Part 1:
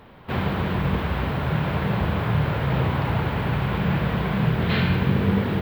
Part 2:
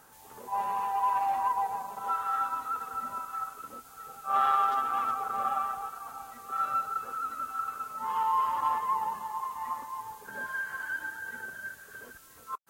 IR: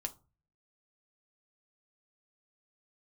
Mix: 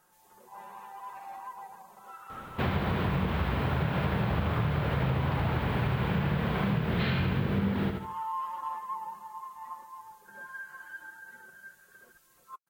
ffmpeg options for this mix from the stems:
-filter_complex "[0:a]adelay=2300,volume=0dB,asplit=2[a][b];[b]volume=-7.5dB[c];[1:a]aecho=1:1:5.6:0.69,acontrast=33,volume=-16.5dB[d];[c]aecho=0:1:76|152|228|304|380:1|0.32|0.102|0.0328|0.0105[e];[a][d][e]amix=inputs=3:normalize=0,acompressor=threshold=-25dB:ratio=6"

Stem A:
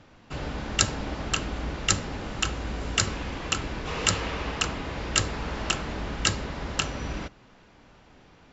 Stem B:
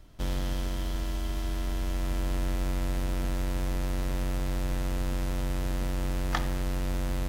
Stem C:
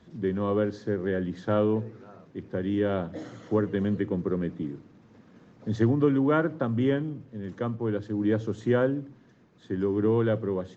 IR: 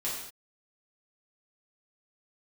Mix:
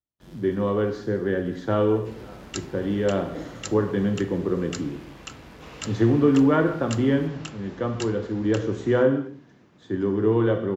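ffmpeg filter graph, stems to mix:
-filter_complex "[0:a]adelay=1750,volume=-12dB[a];[1:a]agate=range=-33dB:threshold=-21dB:ratio=3:detection=peak,volume=-6.5dB[b];[2:a]adelay=200,volume=0dB,asplit=2[c][d];[d]volume=-6dB[e];[3:a]atrim=start_sample=2205[f];[e][f]afir=irnorm=-1:irlink=0[g];[a][b][c][g]amix=inputs=4:normalize=0,highpass=76"

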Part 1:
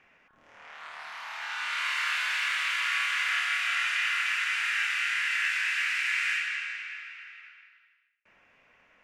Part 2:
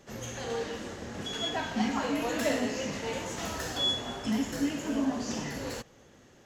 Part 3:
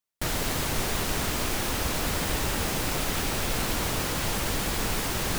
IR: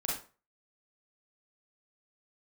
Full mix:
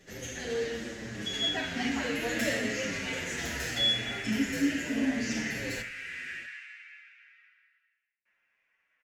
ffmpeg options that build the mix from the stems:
-filter_complex "[0:a]highshelf=f=2.7k:g=10,volume=-20dB[a];[1:a]equalizer=f=1.1k:w=1.1:g=-14.5,volume=2dB,asplit=2[b][c];[c]volume=-12dB[d];[3:a]atrim=start_sample=2205[e];[d][e]afir=irnorm=-1:irlink=0[f];[a][b][f]amix=inputs=3:normalize=0,equalizer=f=1.8k:t=o:w=0.97:g=10.5,bandreject=f=50:t=h:w=6,bandreject=f=100:t=h:w=6,bandreject=f=150:t=h:w=6,bandreject=f=200:t=h:w=6,asplit=2[g][h];[h]adelay=7.4,afreqshift=-0.69[i];[g][i]amix=inputs=2:normalize=1"

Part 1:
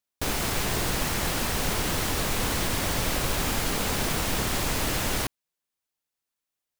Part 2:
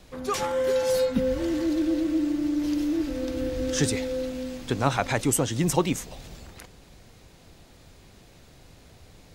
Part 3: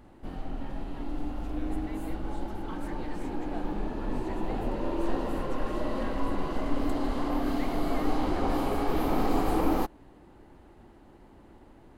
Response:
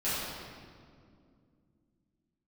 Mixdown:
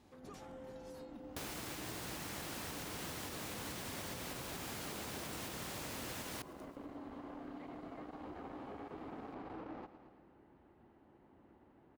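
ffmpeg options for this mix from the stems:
-filter_complex "[0:a]alimiter=limit=-18.5dB:level=0:latency=1:release=318,adelay=1150,volume=-5dB,asplit=2[a][b];[b]volume=-24dB[c];[1:a]acompressor=threshold=-39dB:ratio=2,volume=-17dB[d];[2:a]lowpass=2.7k,asoftclip=type=tanh:threshold=-25.5dB,volume=-10dB,asplit=2[e][f];[f]volume=-15dB[g];[c][g]amix=inputs=2:normalize=0,aecho=0:1:112|224|336|448|560|672|784|896|1008:1|0.57|0.325|0.185|0.106|0.0602|0.0343|0.0195|0.0111[h];[a][d][e][h]amix=inputs=4:normalize=0,highpass=87,acompressor=threshold=-49dB:ratio=2"

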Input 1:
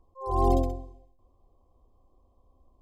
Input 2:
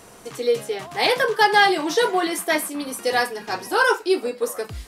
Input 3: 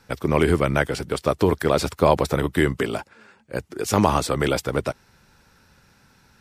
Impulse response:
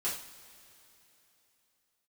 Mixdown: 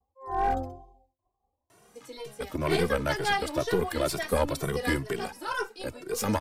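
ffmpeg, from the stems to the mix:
-filter_complex "[0:a]agate=range=-33dB:threshold=-55dB:ratio=3:detection=peak,equalizer=f=790:w=3.8:g=13,asoftclip=type=hard:threshold=-12.5dB,volume=-3dB[a];[1:a]adelay=1700,volume=-7dB[b];[2:a]highshelf=f=6.2k:g=8.5,adelay=2300,volume=-2.5dB[c];[a][b][c]amix=inputs=3:normalize=0,highpass=49,aeval=exprs='(tanh(3.16*val(0)+0.65)-tanh(0.65))/3.16':c=same,asplit=2[d][e];[e]adelay=2.1,afreqshift=2.1[f];[d][f]amix=inputs=2:normalize=1"

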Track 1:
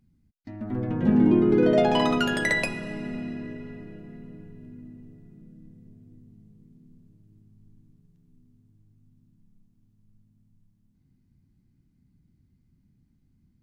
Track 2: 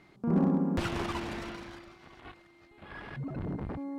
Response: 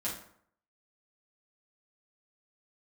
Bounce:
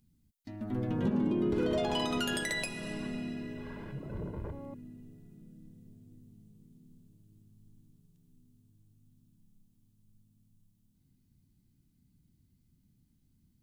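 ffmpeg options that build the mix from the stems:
-filter_complex "[0:a]aexciter=amount=2.9:drive=4:freq=2.9k,volume=-4.5dB[a];[1:a]tiltshelf=f=1.3k:g=4.5,aecho=1:1:2:0.74,adelay=750,volume=-9.5dB,asplit=2[b][c];[c]volume=-10.5dB[d];[2:a]atrim=start_sample=2205[e];[d][e]afir=irnorm=-1:irlink=0[f];[a][b][f]amix=inputs=3:normalize=0,alimiter=limit=-21.5dB:level=0:latency=1:release=233"

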